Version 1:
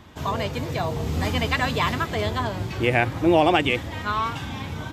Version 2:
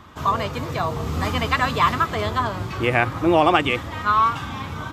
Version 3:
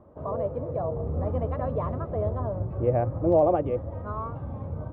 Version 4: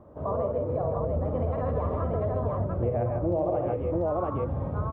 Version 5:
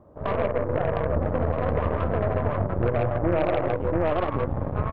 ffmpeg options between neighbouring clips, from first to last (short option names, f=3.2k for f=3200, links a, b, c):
-af "equalizer=f=1.2k:w=2.9:g=11"
-af "lowpass=f=560:t=q:w=4.9,asubboost=boost=4:cutoff=170,volume=-8.5dB"
-filter_complex "[0:a]asplit=2[a][b];[b]aecho=0:1:51|135|157|691:0.447|0.473|0.501|0.708[c];[a][c]amix=inputs=2:normalize=0,acompressor=threshold=-26dB:ratio=6,volume=2dB"
-af "aeval=exprs='0.178*(cos(1*acos(clip(val(0)/0.178,-1,1)))-cos(1*PI/2))+0.0282*(cos(4*acos(clip(val(0)/0.178,-1,1)))-cos(4*PI/2))+0.0355*(cos(6*acos(clip(val(0)/0.178,-1,1)))-cos(6*PI/2))+0.0112*(cos(7*acos(clip(val(0)/0.178,-1,1)))-cos(7*PI/2))':c=same,volume=3.5dB"